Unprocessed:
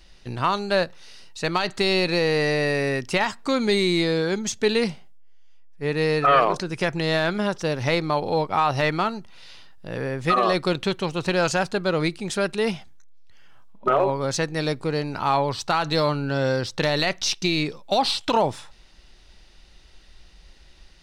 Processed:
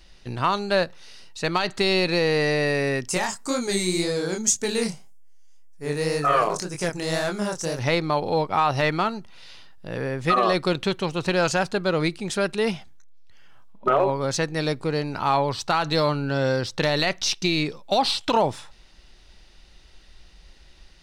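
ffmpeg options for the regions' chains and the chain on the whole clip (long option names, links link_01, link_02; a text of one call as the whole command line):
ffmpeg -i in.wav -filter_complex "[0:a]asettb=1/sr,asplit=3[link_01][link_02][link_03];[link_01]atrim=end=3.084[link_04];[link_02]atrim=start=3.08:end=7.79,asetpts=PTS-STARTPTS,afade=type=in:duration=0.004:curve=qsin,afade=type=out:start_time=4.706:duration=0.004:curve=qsin,flanger=delay=20:depth=7.9:speed=1.9,highshelf=frequency=5000:width_type=q:width=1.5:gain=12[link_05];[link_03]atrim=start=7.786[link_06];[link_04][link_05]acrossfade=duration=0.004:curve1=hsin:curve2=qsin[link_07];[link_07][link_06]acrossfade=duration=0.004:curve1=qsin:curve2=hsin" out.wav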